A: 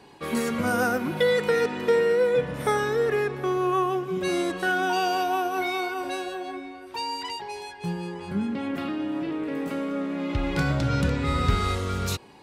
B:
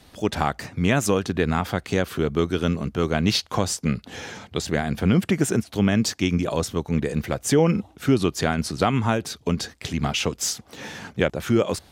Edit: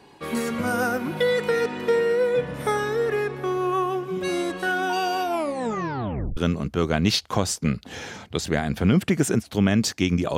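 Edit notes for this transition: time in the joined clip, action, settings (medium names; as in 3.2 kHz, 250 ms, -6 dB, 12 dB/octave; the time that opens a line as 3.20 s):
A
5.25 s: tape stop 1.12 s
6.37 s: go over to B from 2.58 s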